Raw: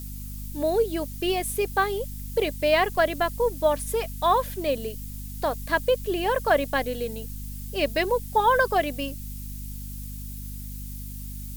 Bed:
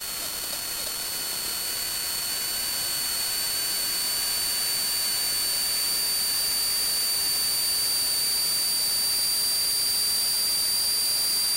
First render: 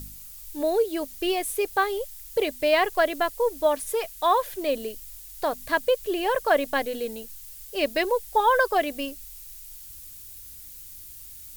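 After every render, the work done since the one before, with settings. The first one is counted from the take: de-hum 50 Hz, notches 5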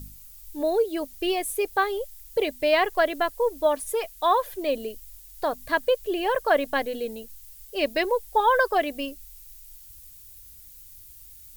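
denoiser 6 dB, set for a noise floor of -44 dBFS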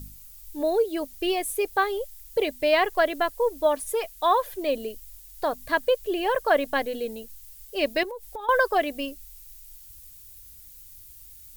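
8.03–8.49 compressor 16:1, threshold -32 dBFS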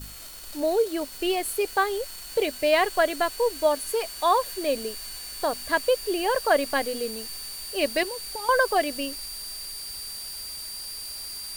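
add bed -12.5 dB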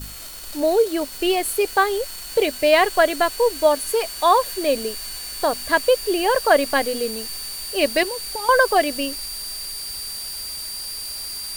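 gain +5.5 dB

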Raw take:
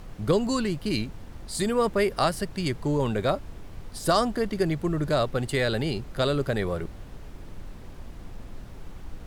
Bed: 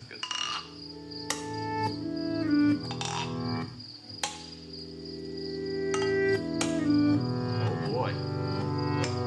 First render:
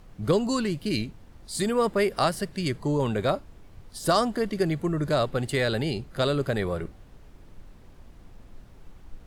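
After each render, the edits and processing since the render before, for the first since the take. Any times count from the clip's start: noise print and reduce 8 dB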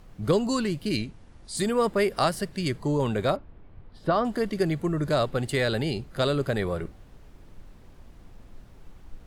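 0.97–1.57 Chebyshev low-pass 11000 Hz, order 10; 3.36–4.25 air absorption 400 m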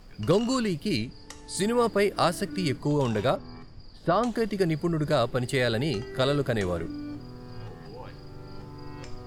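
add bed -13 dB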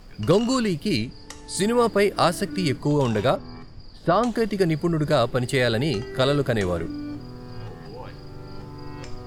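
gain +4 dB

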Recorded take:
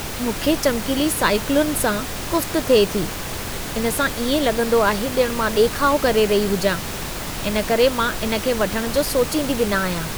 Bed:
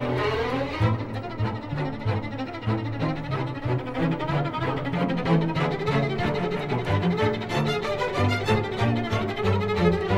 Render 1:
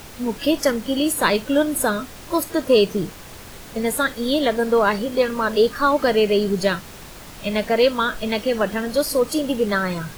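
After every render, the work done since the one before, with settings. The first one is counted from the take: noise print and reduce 11 dB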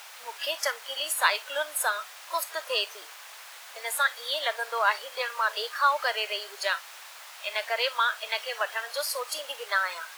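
Bessel high-pass 1100 Hz, order 6; high shelf 4400 Hz -5.5 dB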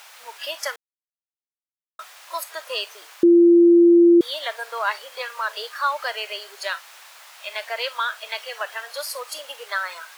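0.76–1.99 mute; 3.23–4.21 bleep 343 Hz -9 dBFS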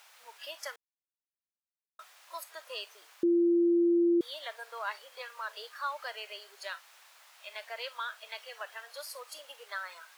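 gain -12.5 dB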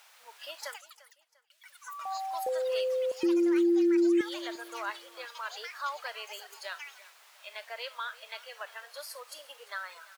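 feedback echo 0.347 s, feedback 36%, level -19 dB; echoes that change speed 0.307 s, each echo +7 st, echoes 3, each echo -6 dB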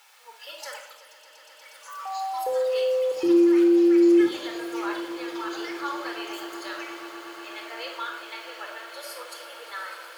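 on a send: swelling echo 0.12 s, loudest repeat 8, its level -17 dB; on the sum: shoebox room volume 2600 m³, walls furnished, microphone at 4.2 m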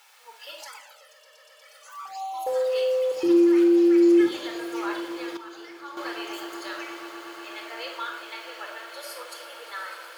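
0.63–2.47 envelope flanger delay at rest 2.1 ms, full sweep at -27.5 dBFS; 5.37–5.97 gain -9.5 dB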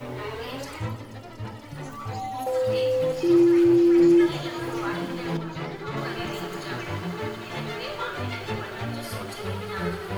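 add bed -9 dB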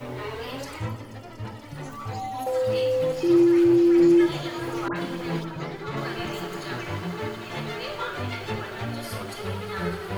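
0.84–1.45 notch 3900 Hz; 4.88–5.65 dispersion highs, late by 80 ms, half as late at 1900 Hz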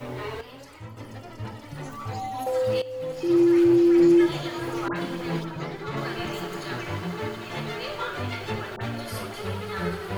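0.41–0.97 gain -10 dB; 2.82–3.52 fade in, from -16 dB; 8.76–9.34 dispersion highs, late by 51 ms, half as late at 1400 Hz

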